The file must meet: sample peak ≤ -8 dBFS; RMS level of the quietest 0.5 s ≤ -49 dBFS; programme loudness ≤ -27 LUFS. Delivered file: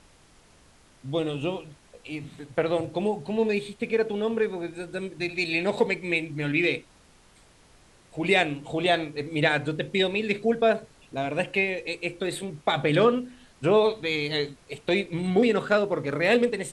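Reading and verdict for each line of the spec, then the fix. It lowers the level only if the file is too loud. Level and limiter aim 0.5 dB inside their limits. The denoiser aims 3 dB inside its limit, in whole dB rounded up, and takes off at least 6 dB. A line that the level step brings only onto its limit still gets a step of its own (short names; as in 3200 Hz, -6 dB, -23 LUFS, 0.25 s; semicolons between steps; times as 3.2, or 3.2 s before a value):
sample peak -8.5 dBFS: OK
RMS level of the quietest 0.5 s -57 dBFS: OK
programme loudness -26.0 LUFS: fail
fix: gain -1.5 dB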